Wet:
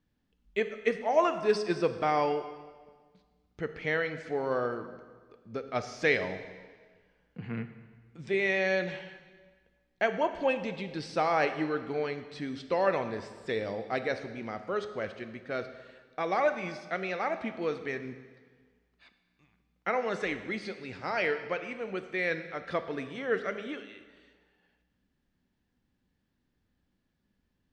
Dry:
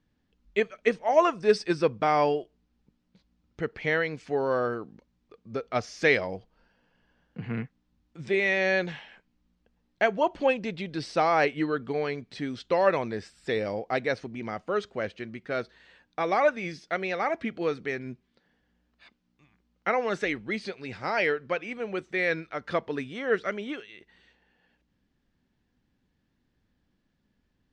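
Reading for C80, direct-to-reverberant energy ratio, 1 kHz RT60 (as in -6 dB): 12.0 dB, 9.0 dB, 1.5 s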